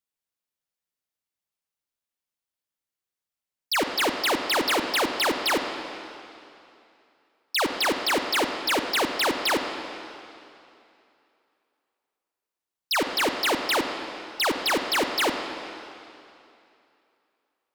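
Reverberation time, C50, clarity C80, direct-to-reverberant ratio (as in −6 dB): 2.7 s, 6.0 dB, 6.5 dB, 5.5 dB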